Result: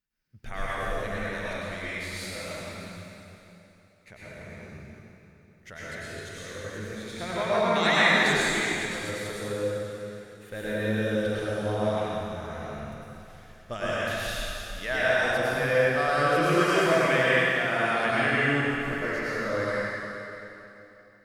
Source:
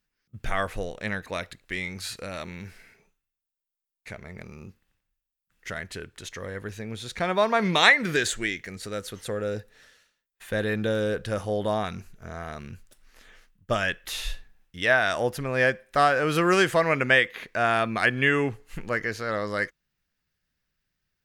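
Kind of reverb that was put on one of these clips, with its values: plate-style reverb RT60 3.1 s, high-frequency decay 0.9×, pre-delay 85 ms, DRR -9.5 dB; gain -10.5 dB

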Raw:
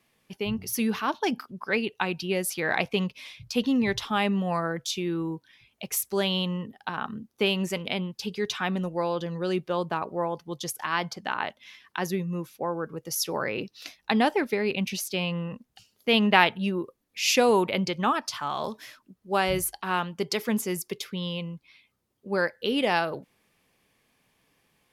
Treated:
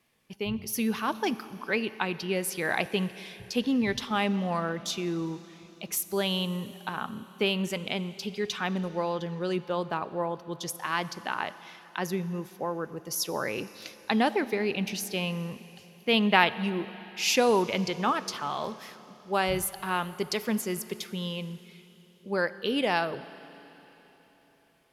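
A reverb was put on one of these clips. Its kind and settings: Schroeder reverb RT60 3.9 s, combs from 28 ms, DRR 15 dB; gain -2 dB

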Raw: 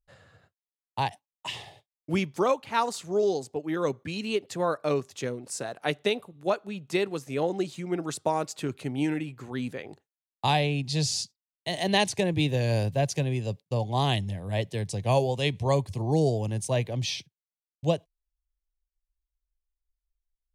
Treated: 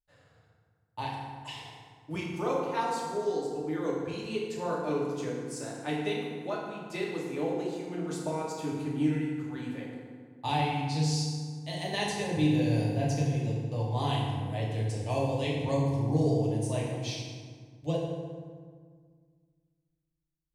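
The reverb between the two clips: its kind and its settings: FDN reverb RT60 1.8 s, low-frequency decay 1.4×, high-frequency decay 0.6×, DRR -5 dB; gain -11 dB

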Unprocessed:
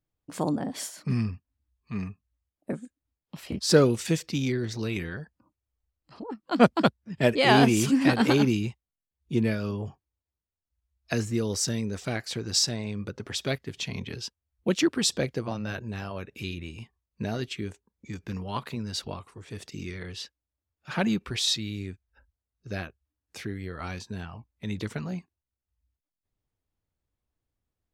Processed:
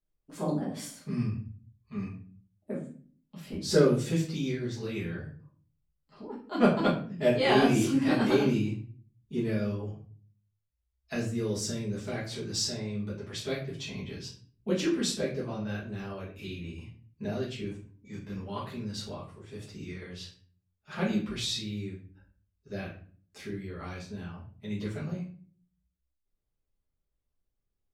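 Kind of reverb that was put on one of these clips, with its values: shoebox room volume 40 m³, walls mixed, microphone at 1.5 m; gain -13.5 dB

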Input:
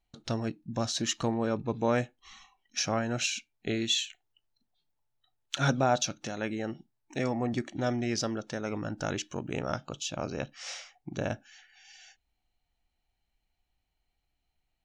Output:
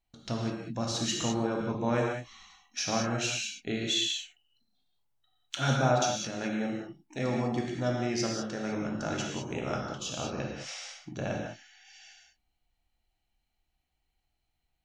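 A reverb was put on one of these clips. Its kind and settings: non-linear reverb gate 0.23 s flat, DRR -1.5 dB; gain -3.5 dB

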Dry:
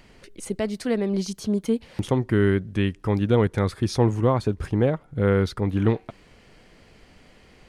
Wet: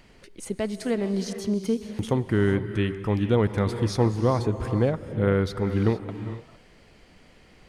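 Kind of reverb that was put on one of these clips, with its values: non-linear reverb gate 0.48 s rising, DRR 9 dB; gain -2 dB

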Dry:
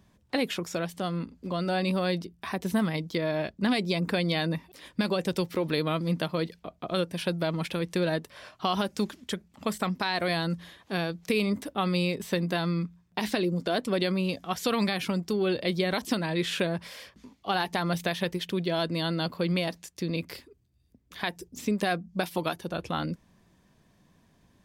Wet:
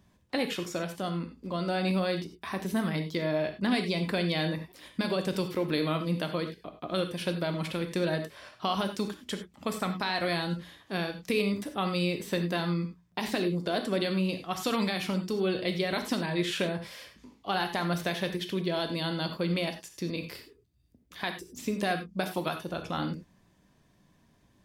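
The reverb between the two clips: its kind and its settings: non-linear reverb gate 0.12 s flat, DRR 6 dB; gain -2.5 dB

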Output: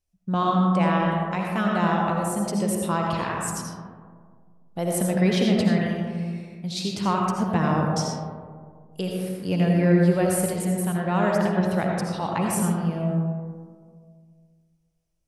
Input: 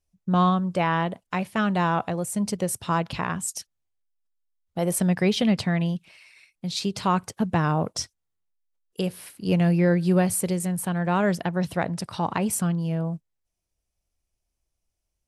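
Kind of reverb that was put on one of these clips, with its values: digital reverb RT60 1.9 s, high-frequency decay 0.3×, pre-delay 40 ms, DRR -1 dB; gain -2.5 dB

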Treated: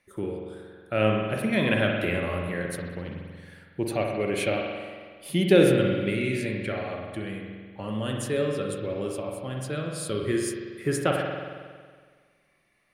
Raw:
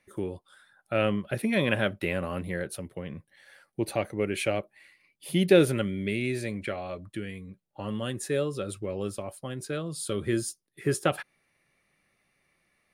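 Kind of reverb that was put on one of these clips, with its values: spring tank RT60 1.7 s, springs 46 ms, chirp 20 ms, DRR 0.5 dB

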